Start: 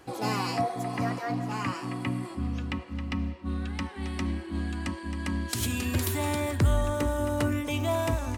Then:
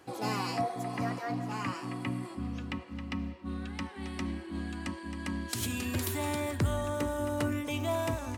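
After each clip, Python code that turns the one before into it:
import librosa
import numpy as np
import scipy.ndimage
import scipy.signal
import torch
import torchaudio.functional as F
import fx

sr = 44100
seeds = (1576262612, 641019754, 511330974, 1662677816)

y = scipy.signal.sosfilt(scipy.signal.butter(2, 88.0, 'highpass', fs=sr, output='sos'), x)
y = F.gain(torch.from_numpy(y), -3.5).numpy()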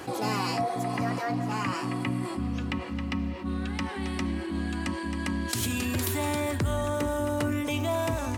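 y = fx.env_flatten(x, sr, amount_pct=50)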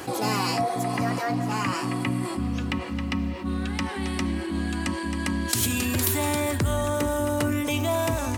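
y = fx.high_shelf(x, sr, hz=6200.0, db=6.0)
y = F.gain(torch.from_numpy(y), 3.0).numpy()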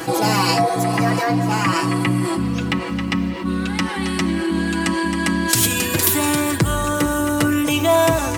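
y = x + 0.69 * np.pad(x, (int(6.1 * sr / 1000.0), 0))[:len(x)]
y = F.gain(torch.from_numpy(y), 6.5).numpy()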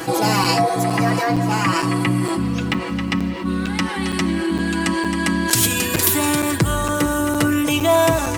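y = fx.buffer_crackle(x, sr, first_s=0.44, period_s=0.46, block=256, kind='zero')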